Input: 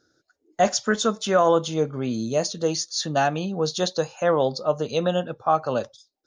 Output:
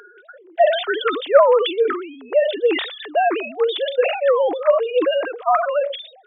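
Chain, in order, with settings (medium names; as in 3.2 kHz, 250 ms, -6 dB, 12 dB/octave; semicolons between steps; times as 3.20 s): formants replaced by sine waves; upward compressor, threshold -33 dBFS; high-pass 430 Hz 24 dB/octave; decay stretcher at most 81 dB/s; trim +4.5 dB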